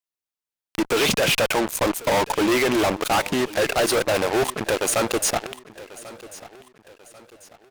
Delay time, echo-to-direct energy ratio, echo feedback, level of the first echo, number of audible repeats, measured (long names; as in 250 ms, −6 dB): 1,091 ms, −18.0 dB, 40%, −18.5 dB, 3